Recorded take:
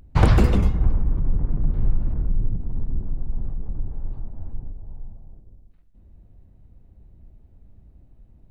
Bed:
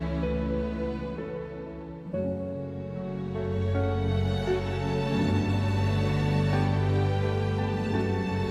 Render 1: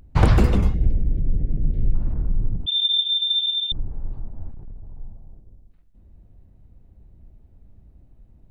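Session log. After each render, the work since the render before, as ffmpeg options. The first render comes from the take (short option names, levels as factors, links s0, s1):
-filter_complex "[0:a]asettb=1/sr,asplit=3[s0][s1][s2];[s0]atrim=end=0.744[s3];[s1]atrim=start=0.74:end=1.94,asetpts=PTS-STARTPTS,afade=t=in:d=0.004:c=qsin,afade=t=out:st=1.196:d=0.004:c=qsin,asuperstop=centerf=1100:order=4:qfactor=0.73[s4];[s2]atrim=start=1.936[s5];[s3][s4]acrossfade=d=0.004:c1=hsin:c2=qsin[s6];[s6][s5]acrossfade=d=0.004:c1=qsin:c2=hsin,asettb=1/sr,asplit=3[s7][s8][s9];[s7]atrim=end=2.664[s10];[s8]atrim=start=2.66:end=3.72,asetpts=PTS-STARTPTS,afade=t=in:d=0.004:c=qsin,afade=t=out:st=1.056:d=0.004:c=qsin,lowpass=f=3100:t=q:w=0.5098,lowpass=f=3100:t=q:w=0.6013,lowpass=f=3100:t=q:w=0.9,lowpass=f=3100:t=q:w=2.563,afreqshift=-3600[s11];[s9]atrim=start=3.716[s12];[s10][s11]acrossfade=d=0.004:c1=hsin:c2=qsin[s13];[s13][s12]acrossfade=d=0.004:c1=qsin:c2=hsin,asettb=1/sr,asplit=3[s14][s15][s16];[s14]atrim=end=4.514[s17];[s15]atrim=start=4.51:end=4.98,asetpts=PTS-STARTPTS,afade=t=in:d=0.004:c=qsin,afade=t=out:st=0.466:d=0.004:c=qsin,volume=42.2,asoftclip=hard,volume=0.0237[s18];[s16]atrim=start=4.976[s19];[s17][s18]acrossfade=d=0.004:c1=hsin:c2=qsin[s20];[s20][s19]acrossfade=d=0.004:c1=qsin:c2=hsin"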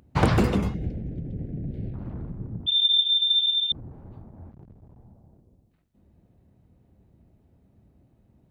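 -af "highpass=110,bandreject=f=50:t=h:w=6,bandreject=f=100:t=h:w=6,bandreject=f=150:t=h:w=6"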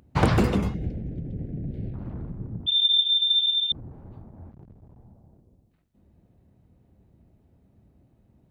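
-af anull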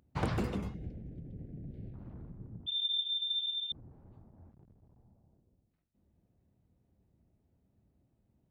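-af "volume=0.237"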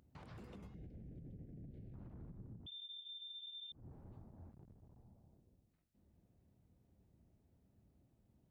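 -af "acompressor=threshold=0.00708:ratio=10,alimiter=level_in=11.9:limit=0.0631:level=0:latency=1:release=148,volume=0.0841"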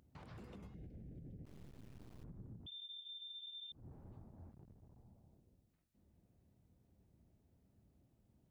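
-filter_complex "[0:a]asettb=1/sr,asplit=3[s0][s1][s2];[s0]atrim=end=1.454[s3];[s1]atrim=start=1.45:end=2.24,asetpts=PTS-STARTPTS,afade=t=in:d=0.004:c=qsin,afade=t=out:st=0.786:d=0.004:c=qsin,acrusher=bits=8:dc=4:mix=0:aa=0.000001[s4];[s2]atrim=start=2.236[s5];[s3][s4]acrossfade=d=0.004:c1=hsin:c2=qsin[s6];[s6][s5]acrossfade=d=0.004:c1=qsin:c2=hsin"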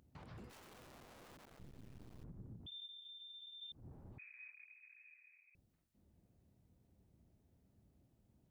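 -filter_complex "[0:a]asplit=3[s0][s1][s2];[s0]afade=t=out:st=0.49:d=0.02[s3];[s1]aeval=exprs='(mod(562*val(0)+1,2)-1)/562':c=same,afade=t=in:st=0.49:d=0.02,afade=t=out:st=1.58:d=0.02[s4];[s2]afade=t=in:st=1.58:d=0.02[s5];[s3][s4][s5]amix=inputs=3:normalize=0,asettb=1/sr,asplit=3[s6][s7][s8];[s6]atrim=end=2.864[s9];[s7]atrim=start=2.86:end=3.61,asetpts=PTS-STARTPTS,afade=t=in:d=0.004:c=qsin,afade=t=out:st=0.746:d=0.004:c=qsin,acompressor=threshold=0.00251:ratio=6:attack=3.2:release=140:knee=1:detection=peak[s10];[s8]atrim=start=3.606[s11];[s9][s10]acrossfade=d=0.004:c1=hsin:c2=qsin[s12];[s12][s11]acrossfade=d=0.004:c1=qsin:c2=hsin,asettb=1/sr,asplit=3[s13][s14][s15];[s13]atrim=end=4.184[s16];[s14]atrim=start=4.18:end=5.55,asetpts=PTS-STARTPTS,afade=t=in:d=0.004:c=qsin,afade=t=out:st=1.366:d=0.004:c=qsin,lowpass=f=2200:t=q:w=0.5098,lowpass=f=2200:t=q:w=0.6013,lowpass=f=2200:t=q:w=0.9,lowpass=f=2200:t=q:w=2.563,afreqshift=-2600[s17];[s15]atrim=start=5.546[s18];[s16][s17]acrossfade=d=0.004:c1=hsin:c2=qsin[s19];[s19][s18]acrossfade=d=0.004:c1=qsin:c2=hsin"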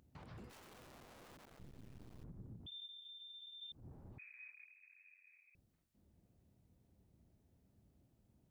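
-filter_complex "[0:a]asplit=3[s0][s1][s2];[s0]afade=t=out:st=4.68:d=0.02[s3];[s1]tremolo=f=93:d=0.571,afade=t=in:st=4.68:d=0.02,afade=t=out:st=5.26:d=0.02[s4];[s2]afade=t=in:st=5.26:d=0.02[s5];[s3][s4][s5]amix=inputs=3:normalize=0"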